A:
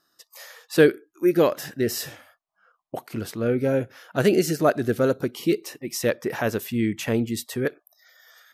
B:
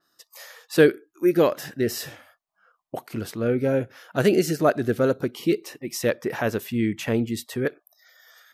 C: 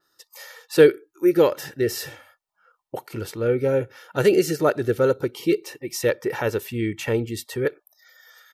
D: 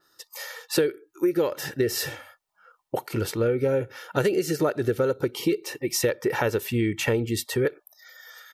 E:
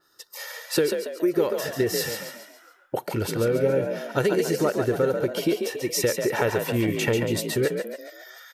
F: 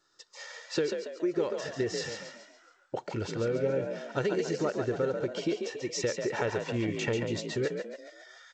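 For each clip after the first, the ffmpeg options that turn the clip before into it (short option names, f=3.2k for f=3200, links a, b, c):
-af "adynamicequalizer=threshold=0.00501:dfrequency=4500:dqfactor=0.7:tfrequency=4500:tqfactor=0.7:attack=5:release=100:ratio=0.375:range=2:mode=cutabove:tftype=highshelf"
-af "aecho=1:1:2.2:0.53"
-af "acompressor=threshold=-24dB:ratio=10,volume=4.5dB"
-filter_complex "[0:a]asplit=6[a][b][c][d][e][f];[b]adelay=140,afreqshift=50,volume=-6dB[g];[c]adelay=280,afreqshift=100,volume=-12.9dB[h];[d]adelay=420,afreqshift=150,volume=-19.9dB[i];[e]adelay=560,afreqshift=200,volume=-26.8dB[j];[f]adelay=700,afreqshift=250,volume=-33.7dB[k];[a][g][h][i][j][k]amix=inputs=6:normalize=0"
-af "volume=-7dB" -ar 16000 -c:a g722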